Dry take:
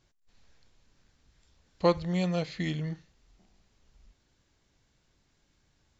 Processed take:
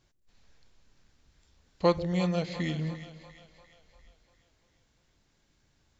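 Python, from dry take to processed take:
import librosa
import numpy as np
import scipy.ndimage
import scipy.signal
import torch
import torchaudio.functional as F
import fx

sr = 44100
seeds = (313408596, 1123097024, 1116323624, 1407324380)

y = fx.echo_split(x, sr, split_hz=560.0, low_ms=142, high_ms=347, feedback_pct=52, wet_db=-12)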